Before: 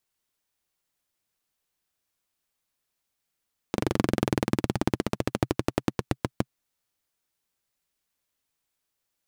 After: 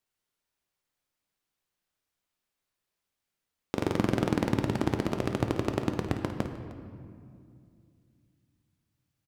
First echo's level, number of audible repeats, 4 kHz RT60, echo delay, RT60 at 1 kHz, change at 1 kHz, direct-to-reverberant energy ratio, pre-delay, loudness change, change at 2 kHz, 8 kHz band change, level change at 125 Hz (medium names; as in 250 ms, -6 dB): -11.0 dB, 2, 1.3 s, 54 ms, 2.1 s, -1.5 dB, 4.5 dB, 5 ms, -1.0 dB, -2.0 dB, -5.5 dB, -0.5 dB